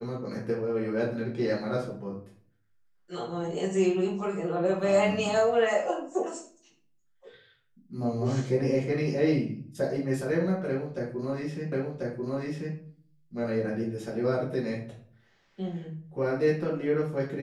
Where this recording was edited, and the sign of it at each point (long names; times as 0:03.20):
0:11.72: the same again, the last 1.04 s